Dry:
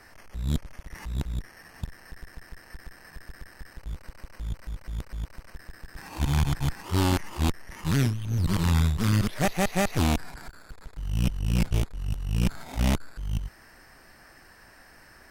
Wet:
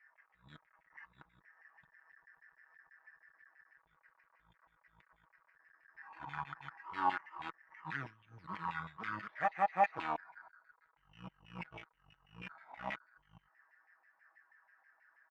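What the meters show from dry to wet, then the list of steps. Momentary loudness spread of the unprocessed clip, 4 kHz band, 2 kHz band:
22 LU, −21.0 dB, −7.0 dB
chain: comb filter 6.2 ms, depth 43%
auto-filter band-pass saw down 6.2 Hz 860–2,200 Hz
every bin expanded away from the loudest bin 1.5 to 1
level +4 dB

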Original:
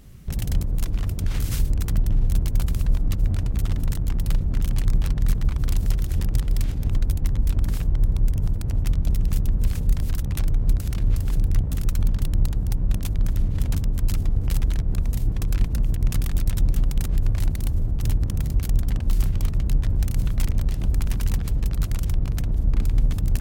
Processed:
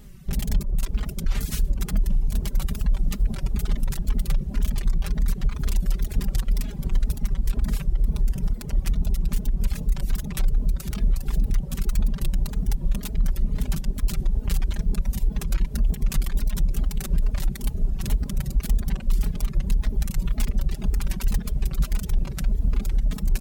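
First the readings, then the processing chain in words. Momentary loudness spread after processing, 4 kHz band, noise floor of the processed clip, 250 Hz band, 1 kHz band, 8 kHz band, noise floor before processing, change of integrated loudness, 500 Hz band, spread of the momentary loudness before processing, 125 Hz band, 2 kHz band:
2 LU, +0.5 dB, −34 dBFS, −0.5 dB, −0.5 dB, +0.5 dB, −27 dBFS, −2.5 dB, −1.0 dB, 2 LU, −4.5 dB, +0.5 dB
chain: comb filter 5 ms, depth 80%
feedback delay with all-pass diffusion 632 ms, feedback 78%, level −16 dB
brickwall limiter −11 dBFS, peak gain reduction 6 dB
tape wow and flutter 87 cents
reverb reduction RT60 1.7 s

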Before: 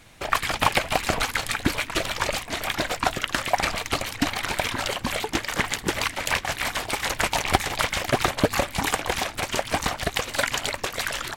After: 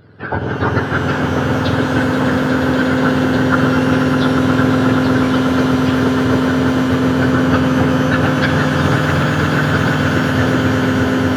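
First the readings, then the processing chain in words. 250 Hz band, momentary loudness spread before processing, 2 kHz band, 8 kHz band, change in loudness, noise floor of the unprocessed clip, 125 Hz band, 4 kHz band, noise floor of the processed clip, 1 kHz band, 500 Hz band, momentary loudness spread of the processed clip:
+20.0 dB, 4 LU, +7.5 dB, −5.0 dB, +10.5 dB, −40 dBFS, +18.5 dB, +1.0 dB, −20 dBFS, +7.0 dB, +12.0 dB, 3 LU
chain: frequency axis turned over on the octave scale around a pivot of 1,000 Hz
parametric band 1,500 Hz +13 dB 0.38 octaves
on a send: echo that builds up and dies away 120 ms, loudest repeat 8, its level −10.5 dB
on the sum: downsampling to 11,025 Hz
reverb with rising layers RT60 3.7 s, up +12 semitones, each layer −8 dB, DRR 3 dB
level +2 dB

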